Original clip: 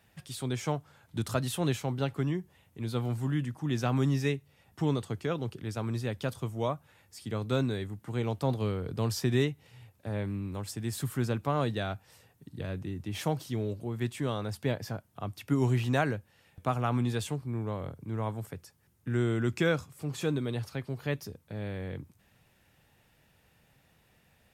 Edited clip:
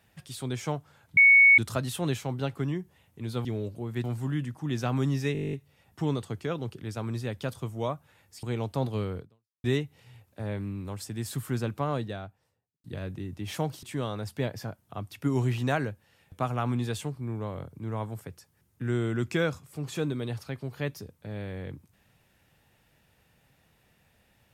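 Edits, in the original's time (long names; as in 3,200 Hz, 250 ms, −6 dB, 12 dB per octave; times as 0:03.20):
0:01.17: insert tone 2,220 Hz −13 dBFS 0.41 s
0:04.33: stutter 0.02 s, 11 plays
0:07.23–0:08.10: remove
0:08.85–0:09.31: fade out exponential
0:11.38–0:12.51: fade out and dull
0:13.50–0:14.09: move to 0:03.04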